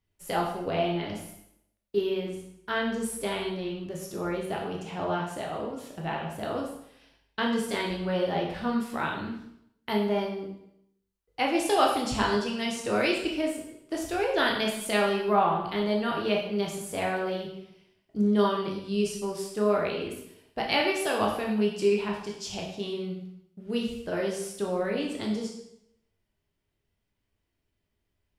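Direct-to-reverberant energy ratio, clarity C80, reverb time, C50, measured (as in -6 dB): -1.5 dB, 7.0 dB, 0.75 s, 4.5 dB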